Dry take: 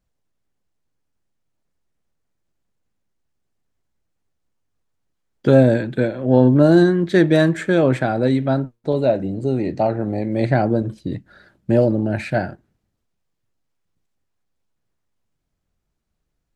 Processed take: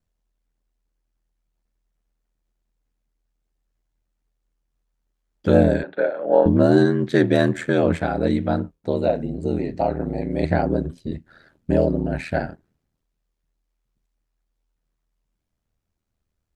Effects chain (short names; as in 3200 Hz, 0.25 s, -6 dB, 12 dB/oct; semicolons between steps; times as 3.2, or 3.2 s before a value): ring modulator 40 Hz; 5.83–6.46 speaker cabinet 480–3700 Hz, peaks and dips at 560 Hz +9 dB, 800 Hz +5 dB, 1400 Hz +7 dB, 2300 Hz -4 dB, 3300 Hz -5 dB